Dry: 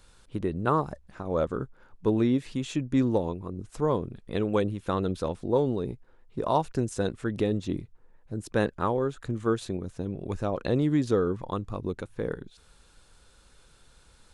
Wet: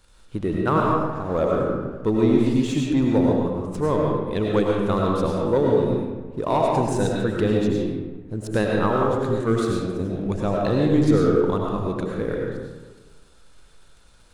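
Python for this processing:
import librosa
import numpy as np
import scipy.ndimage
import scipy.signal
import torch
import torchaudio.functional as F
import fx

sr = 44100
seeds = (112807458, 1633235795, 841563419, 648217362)

y = fx.leveller(x, sr, passes=1)
y = fx.rev_freeverb(y, sr, rt60_s=1.3, hf_ratio=0.6, predelay_ms=60, drr_db=-2.0)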